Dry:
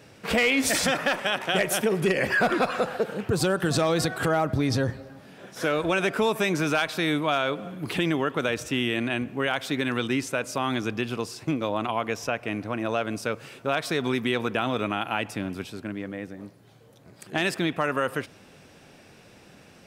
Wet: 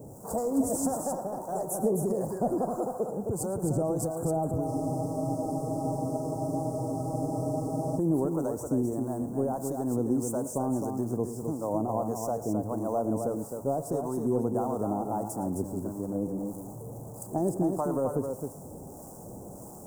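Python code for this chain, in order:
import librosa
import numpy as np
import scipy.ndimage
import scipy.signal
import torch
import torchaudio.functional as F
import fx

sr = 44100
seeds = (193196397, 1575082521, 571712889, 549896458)

p1 = x + 0.5 * 10.0 ** (-38.5 / 20.0) * np.sign(x)
p2 = scipy.signal.sosfilt(scipy.signal.cheby1(3, 1.0, [870.0, 7500.0], 'bandstop', fs=sr, output='sos'), p1)
p3 = fx.rider(p2, sr, range_db=4, speed_s=2.0)
p4 = fx.harmonic_tremolo(p3, sr, hz=1.6, depth_pct=70, crossover_hz=670.0)
p5 = p4 + fx.echo_multitap(p4, sr, ms=(112, 262), db=(-15.5, -5.5), dry=0)
y = fx.spec_freeze(p5, sr, seeds[0], at_s=4.69, hold_s=3.29)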